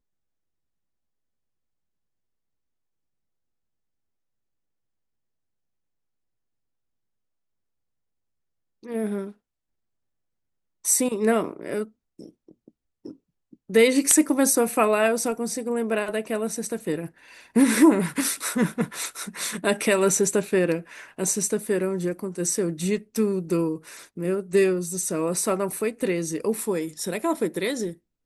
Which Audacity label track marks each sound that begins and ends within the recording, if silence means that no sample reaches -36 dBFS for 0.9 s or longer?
8.850000	9.310000	sound